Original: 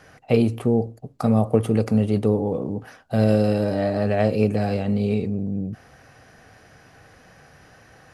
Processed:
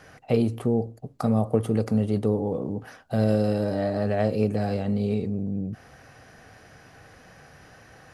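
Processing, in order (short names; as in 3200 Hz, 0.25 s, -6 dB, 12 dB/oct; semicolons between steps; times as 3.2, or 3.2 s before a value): dynamic EQ 2500 Hz, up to -5 dB, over -53 dBFS, Q 3.5; in parallel at -2 dB: compressor, threshold -31 dBFS, peak gain reduction 17.5 dB; on the sum: gain -5 dB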